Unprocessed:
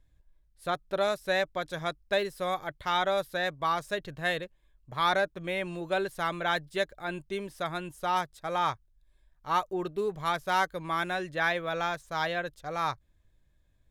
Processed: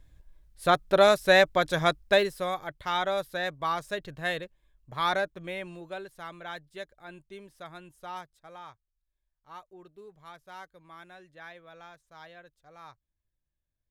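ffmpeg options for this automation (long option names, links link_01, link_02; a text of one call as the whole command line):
ffmpeg -i in.wav -af "volume=8.5dB,afade=type=out:start_time=1.9:duration=0.62:silence=0.334965,afade=type=out:start_time=5.14:duration=0.89:silence=0.316228,afade=type=out:start_time=8.11:duration=0.55:silence=0.421697" out.wav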